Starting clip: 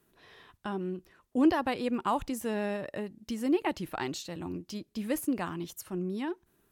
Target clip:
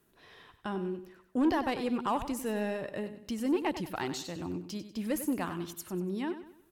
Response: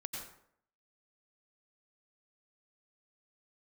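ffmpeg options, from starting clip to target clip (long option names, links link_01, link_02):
-filter_complex "[0:a]asoftclip=type=tanh:threshold=-21dB,asplit=2[link_01][link_02];[link_02]aecho=0:1:96|192|288|384:0.266|0.101|0.0384|0.0146[link_03];[link_01][link_03]amix=inputs=2:normalize=0"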